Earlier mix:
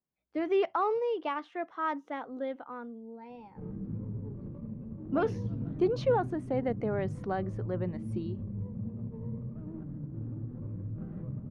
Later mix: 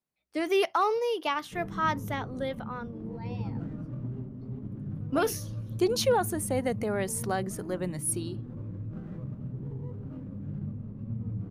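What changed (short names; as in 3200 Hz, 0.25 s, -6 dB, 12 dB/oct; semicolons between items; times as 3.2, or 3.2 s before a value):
background: entry -2.05 s; master: remove tape spacing loss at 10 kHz 37 dB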